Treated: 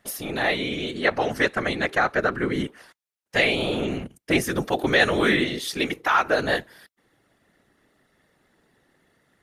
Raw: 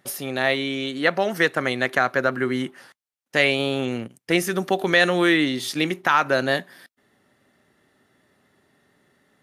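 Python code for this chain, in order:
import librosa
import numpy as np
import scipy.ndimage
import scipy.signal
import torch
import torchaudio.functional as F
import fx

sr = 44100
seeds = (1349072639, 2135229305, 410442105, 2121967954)

y = fx.lowpass(x, sr, hz=10000.0, slope=12, at=(0.94, 2.53))
y = fx.peak_eq(y, sr, hz=78.0, db=-15.0, octaves=1.7, at=(5.42, 6.39))
y = fx.whisperise(y, sr, seeds[0])
y = y * librosa.db_to_amplitude(-1.5)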